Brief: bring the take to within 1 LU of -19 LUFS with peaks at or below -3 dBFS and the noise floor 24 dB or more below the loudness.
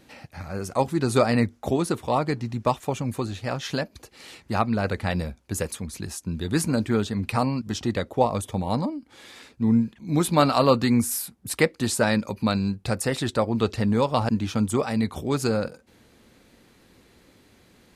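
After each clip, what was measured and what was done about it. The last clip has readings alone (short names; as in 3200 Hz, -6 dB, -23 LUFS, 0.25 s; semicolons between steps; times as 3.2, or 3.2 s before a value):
loudness -25.0 LUFS; peak -5.0 dBFS; loudness target -19.0 LUFS
-> gain +6 dB; limiter -3 dBFS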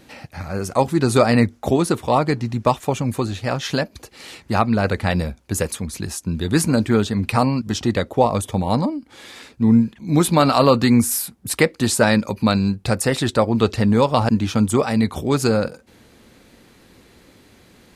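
loudness -19.5 LUFS; peak -3.0 dBFS; noise floor -52 dBFS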